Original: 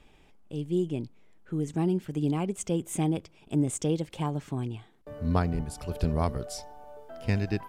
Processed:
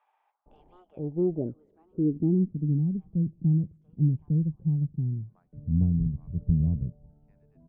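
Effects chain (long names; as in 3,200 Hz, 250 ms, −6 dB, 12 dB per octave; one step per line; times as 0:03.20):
harmonic generator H 8 −32 dB, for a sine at −13.5 dBFS
low-pass filter sweep 860 Hz → 160 Hz, 0:00.62–0:02.38
multiband delay without the direct sound highs, lows 460 ms, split 980 Hz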